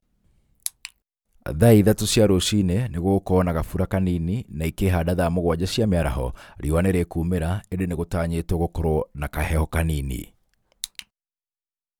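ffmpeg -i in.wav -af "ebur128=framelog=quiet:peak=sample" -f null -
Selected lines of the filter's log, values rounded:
Integrated loudness:
  I:         -22.7 LUFS
  Threshold: -33.4 LUFS
Loudness range:
  LRA:         6.2 LU
  Threshold: -43.3 LUFS
  LRA low:   -26.5 LUFS
  LRA high:  -20.4 LUFS
Sample peak:
  Peak:       -2.6 dBFS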